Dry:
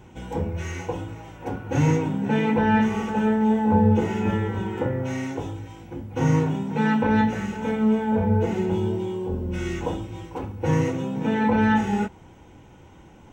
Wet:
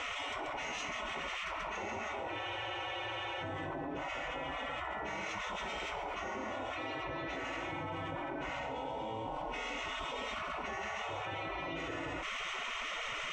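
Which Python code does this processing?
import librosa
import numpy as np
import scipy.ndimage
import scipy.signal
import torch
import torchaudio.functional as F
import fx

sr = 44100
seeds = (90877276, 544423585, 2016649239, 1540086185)

y = fx.highpass(x, sr, hz=93.0, slope=6)
y = fx.high_shelf(y, sr, hz=2900.0, db=-9.5)
y = y + 10.0 ** (-4.5 / 20.0) * np.pad(y, (int(135 * sr / 1000.0), 0))[:len(y)]
y = fx.spec_gate(y, sr, threshold_db=-20, keep='weak')
y = scipy.signal.sosfilt(scipy.signal.butter(2, 5400.0, 'lowpass', fs=sr, output='sos'), y)
y = fx.peak_eq(y, sr, hz=320.0, db=3.5, octaves=0.26)
y = fx.notch(y, sr, hz=1600.0, q=5.5)
y = fx.spec_freeze(y, sr, seeds[0], at_s=2.41, hold_s=1.01)
y = fx.env_flatten(y, sr, amount_pct=100)
y = y * librosa.db_to_amplitude(-6.5)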